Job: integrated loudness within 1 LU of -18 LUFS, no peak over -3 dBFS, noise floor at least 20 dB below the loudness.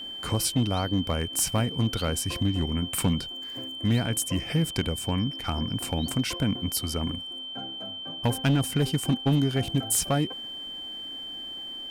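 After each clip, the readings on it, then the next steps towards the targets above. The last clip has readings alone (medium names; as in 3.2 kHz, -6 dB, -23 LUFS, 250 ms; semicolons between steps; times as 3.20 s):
clipped samples 0.7%; clipping level -17.0 dBFS; steady tone 3.1 kHz; tone level -35 dBFS; loudness -27.5 LUFS; peak level -17.0 dBFS; loudness target -18.0 LUFS
-> clip repair -17 dBFS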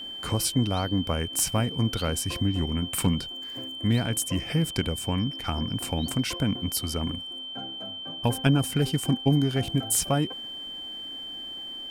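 clipped samples 0.0%; steady tone 3.1 kHz; tone level -35 dBFS
-> band-stop 3.1 kHz, Q 30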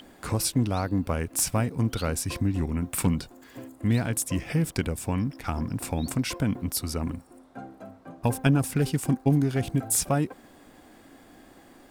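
steady tone not found; loudness -27.0 LUFS; peak level -8.0 dBFS; loudness target -18.0 LUFS
-> trim +9 dB; peak limiter -3 dBFS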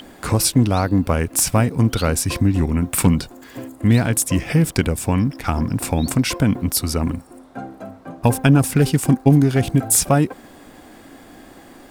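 loudness -18.5 LUFS; peak level -3.0 dBFS; noise floor -45 dBFS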